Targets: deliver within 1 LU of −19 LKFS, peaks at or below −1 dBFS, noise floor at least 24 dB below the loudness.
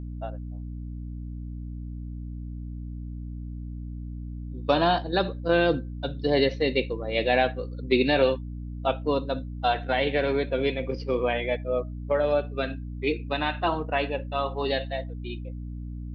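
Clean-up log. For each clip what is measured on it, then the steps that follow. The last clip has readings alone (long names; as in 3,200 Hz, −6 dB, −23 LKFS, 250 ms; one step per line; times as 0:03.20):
mains hum 60 Hz; hum harmonics up to 300 Hz; level of the hum −33 dBFS; integrated loudness −26.5 LKFS; sample peak −9.0 dBFS; target loudness −19.0 LKFS
→ hum removal 60 Hz, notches 5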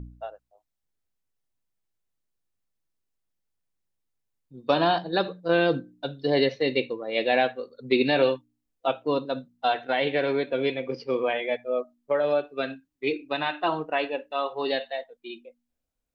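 mains hum none found; integrated loudness −26.5 LKFS; sample peak −10.0 dBFS; target loudness −19.0 LKFS
→ level +7.5 dB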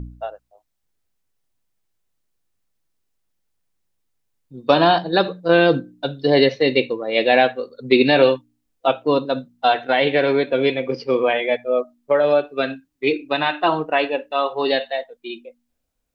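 integrated loudness −19.0 LKFS; sample peak −2.5 dBFS; background noise floor −74 dBFS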